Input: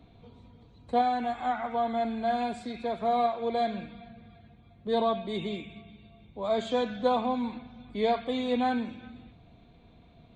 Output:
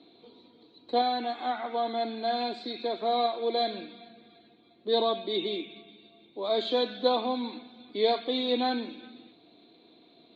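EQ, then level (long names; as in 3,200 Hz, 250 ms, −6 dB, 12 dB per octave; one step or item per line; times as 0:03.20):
high-pass with resonance 330 Hz, resonance Q 4.1
low-pass with resonance 4,100 Hz, resonance Q 6.9
−3.5 dB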